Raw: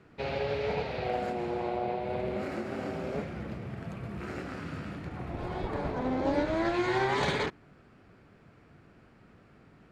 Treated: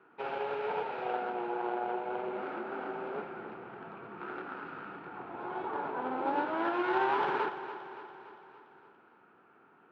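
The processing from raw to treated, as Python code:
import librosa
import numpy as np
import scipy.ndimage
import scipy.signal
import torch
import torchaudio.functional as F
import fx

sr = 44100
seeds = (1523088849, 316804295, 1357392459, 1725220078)

y = fx.tracing_dist(x, sr, depth_ms=0.41)
y = fx.cabinet(y, sr, low_hz=350.0, low_slope=12, high_hz=2900.0, hz=(380.0, 590.0, 890.0, 1400.0, 2000.0), db=(4, -6, 9, 8, -7))
y = fx.echo_feedback(y, sr, ms=286, feedback_pct=58, wet_db=-12.0)
y = y * 10.0 ** (-3.0 / 20.0)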